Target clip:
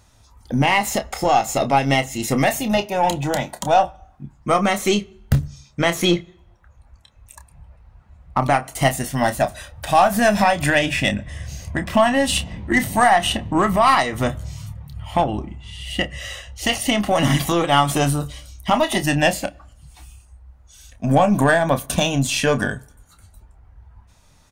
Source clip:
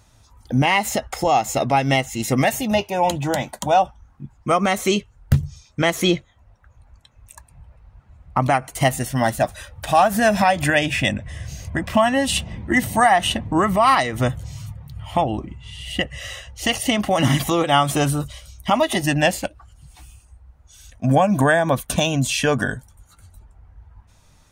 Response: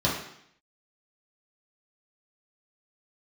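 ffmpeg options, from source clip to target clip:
-filter_complex "[0:a]asplit=2[s0][s1];[s1]adelay=29,volume=0.316[s2];[s0][s2]amix=inputs=2:normalize=0,aeval=exprs='0.794*(cos(1*acos(clip(val(0)/0.794,-1,1)))-cos(1*PI/2))+0.0224*(cos(8*acos(clip(val(0)/0.794,-1,1)))-cos(8*PI/2))':c=same,asplit=2[s3][s4];[1:a]atrim=start_sample=2205[s5];[s4][s5]afir=irnorm=-1:irlink=0,volume=0.0224[s6];[s3][s6]amix=inputs=2:normalize=0"

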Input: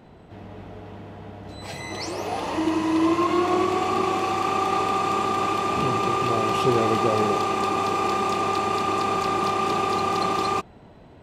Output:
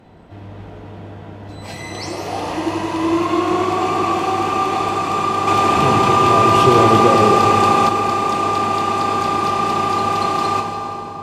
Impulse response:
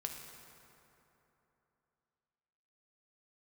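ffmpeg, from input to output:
-filter_complex "[1:a]atrim=start_sample=2205,asetrate=29547,aresample=44100[s0];[0:a][s0]afir=irnorm=-1:irlink=0,asettb=1/sr,asplit=3[s1][s2][s3];[s1]atrim=end=5.474[s4];[s2]atrim=start=5.47:end=7.89,asetpts=PTS-STARTPTS,afade=t=in:d=0.004:c=qsin,afade=t=out:st=2.416:d=0.004:c=qsin,acontrast=27[s5];[s3]atrim=start=7.886[s6];[s4][s5]acrossfade=d=0.004:c1=hsin:c2=qsin[s7];[s7][s6]acrossfade=d=0.004:c1=qsin:c2=hsin,volume=1.41"

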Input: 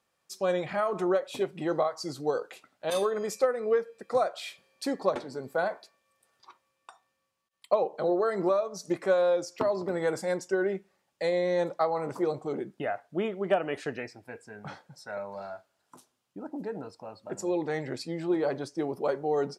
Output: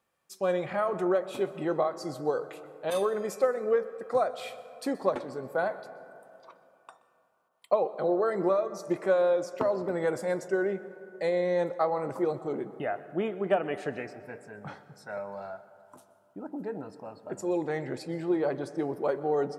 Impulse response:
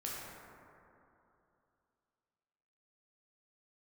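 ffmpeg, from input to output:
-filter_complex "[0:a]equalizer=f=5100:t=o:w=1.4:g=-6.5,asplit=2[s0][s1];[1:a]atrim=start_sample=2205,adelay=125[s2];[s1][s2]afir=irnorm=-1:irlink=0,volume=0.158[s3];[s0][s3]amix=inputs=2:normalize=0"

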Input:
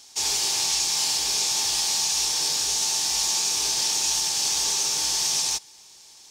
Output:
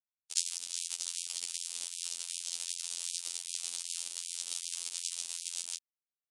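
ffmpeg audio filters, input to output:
-filter_complex "[0:a]acrossover=split=280|2200[s0][s1][s2];[s1]adelay=90[s3];[s2]adelay=210[s4];[s0][s3][s4]amix=inputs=3:normalize=0,acrossover=split=290|6100[s5][s6][s7];[s6]dynaudnorm=f=340:g=7:m=3.35[s8];[s5][s8][s7]amix=inputs=3:normalize=0,alimiter=limit=0.224:level=0:latency=1:release=109,acompressor=threshold=0.0158:ratio=10,asubboost=boost=5.5:cutoff=110,acrusher=bits=4:mix=0:aa=0.000001,aexciter=amount=3.1:drive=8.9:freq=2600,afftfilt=real='hypot(re,im)*cos(PI*b)':imag='0':win_size=2048:overlap=0.75,aresample=22050,aresample=44100,afftfilt=real='re*gte(b*sr/1024,200*pow(2300/200,0.5+0.5*sin(2*PI*2.6*pts/sr)))':imag='im*gte(b*sr/1024,200*pow(2300/200,0.5+0.5*sin(2*PI*2.6*pts/sr)))':win_size=1024:overlap=0.75"

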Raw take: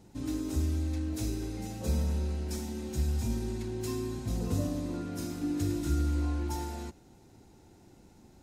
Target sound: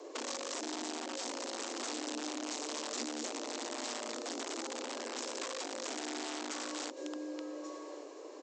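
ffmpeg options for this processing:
-filter_complex "[0:a]highpass=65,aecho=1:1:1133:0.119,acompressor=threshold=0.00891:ratio=12,aresample=16000,aeval=exprs='(mod(94.4*val(0)+1,2)-1)/94.4':c=same,aresample=44100,afreqshift=230,acrossover=split=250|3000[s0][s1][s2];[s1]acompressor=threshold=0.00355:ratio=6[s3];[s0][s3][s2]amix=inputs=3:normalize=0,volume=2.66"

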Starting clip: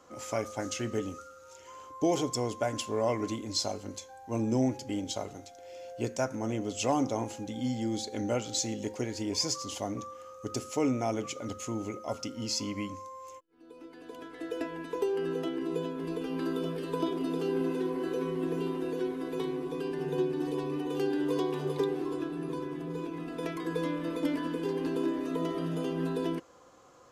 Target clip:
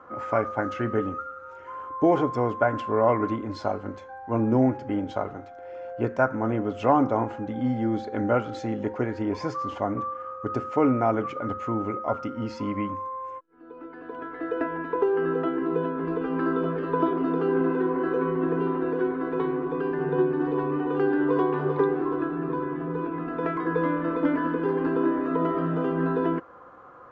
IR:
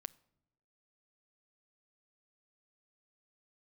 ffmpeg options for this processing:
-af "lowpass=f=1400:t=q:w=2.6,volume=2"

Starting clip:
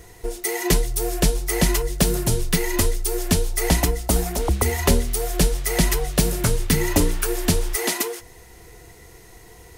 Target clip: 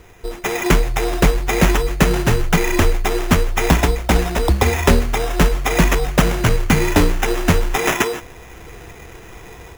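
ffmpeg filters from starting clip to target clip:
-af "acrusher=samples=10:mix=1:aa=0.000001,dynaudnorm=f=270:g=3:m=2.51"

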